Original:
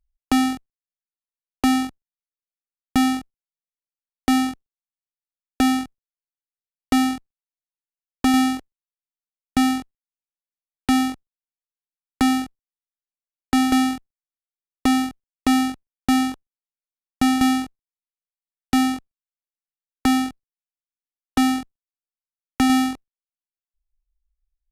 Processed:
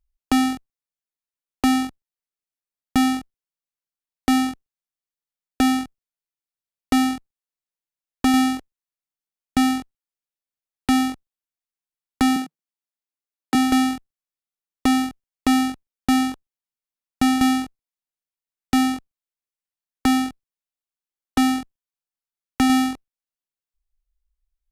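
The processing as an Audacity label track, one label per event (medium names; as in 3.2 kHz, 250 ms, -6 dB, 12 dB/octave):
12.360000	13.550000	Chebyshev high-pass 160 Hz, order 4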